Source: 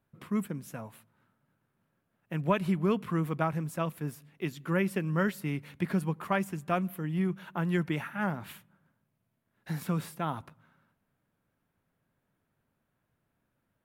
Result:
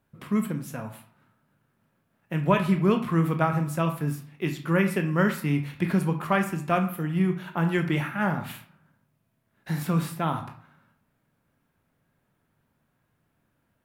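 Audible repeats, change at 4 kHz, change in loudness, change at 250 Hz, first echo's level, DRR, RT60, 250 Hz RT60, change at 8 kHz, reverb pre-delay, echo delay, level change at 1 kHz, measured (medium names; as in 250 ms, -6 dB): no echo, +6.0 dB, +6.0 dB, +6.0 dB, no echo, 5.0 dB, 0.55 s, 0.55 s, +5.5 dB, 18 ms, no echo, +6.0 dB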